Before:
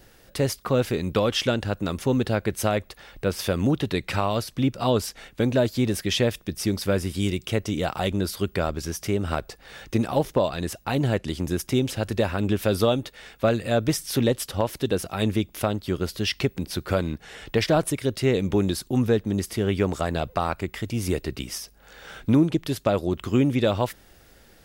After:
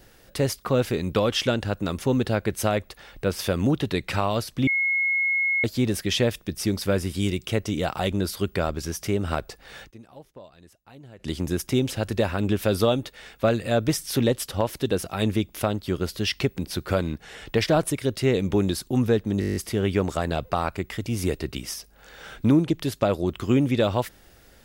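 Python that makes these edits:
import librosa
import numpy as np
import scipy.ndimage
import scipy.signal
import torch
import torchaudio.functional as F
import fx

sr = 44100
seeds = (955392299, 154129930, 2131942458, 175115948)

y = fx.edit(x, sr, fx.bleep(start_s=4.67, length_s=0.97, hz=2170.0, db=-20.0),
    fx.fade_down_up(start_s=9.79, length_s=1.52, db=-23.0, fade_s=0.13, curve='qsin'),
    fx.stutter(start_s=19.4, slice_s=0.02, count=9), tone=tone)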